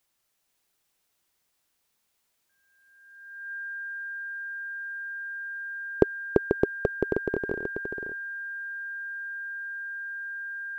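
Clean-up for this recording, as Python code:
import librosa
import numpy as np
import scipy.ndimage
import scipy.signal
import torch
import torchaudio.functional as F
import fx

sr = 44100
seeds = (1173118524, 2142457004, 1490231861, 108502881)

y = fx.notch(x, sr, hz=1600.0, q=30.0)
y = fx.fix_echo_inverse(y, sr, delay_ms=488, level_db=-5.5)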